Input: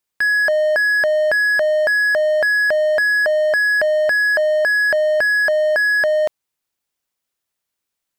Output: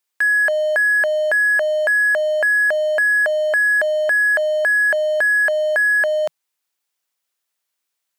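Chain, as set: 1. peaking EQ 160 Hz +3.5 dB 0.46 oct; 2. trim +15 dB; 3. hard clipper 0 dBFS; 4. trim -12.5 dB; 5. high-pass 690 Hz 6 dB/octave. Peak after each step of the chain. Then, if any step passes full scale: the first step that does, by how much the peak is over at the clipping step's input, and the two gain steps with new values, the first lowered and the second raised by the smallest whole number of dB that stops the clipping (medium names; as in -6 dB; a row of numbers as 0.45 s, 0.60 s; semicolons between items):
-11.0 dBFS, +4.0 dBFS, 0.0 dBFS, -12.5 dBFS, -10.5 dBFS; step 2, 4.0 dB; step 2 +11 dB, step 4 -8.5 dB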